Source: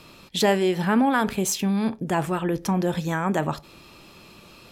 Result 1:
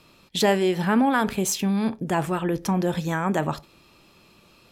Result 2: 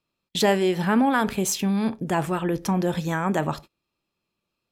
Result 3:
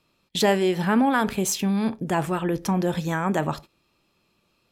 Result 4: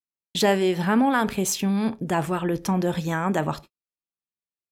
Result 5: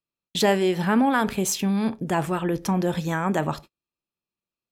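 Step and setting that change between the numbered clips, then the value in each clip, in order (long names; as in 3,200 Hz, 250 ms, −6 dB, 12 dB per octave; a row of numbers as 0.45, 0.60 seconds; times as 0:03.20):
noise gate, range: −7, −33, −20, −59, −46 decibels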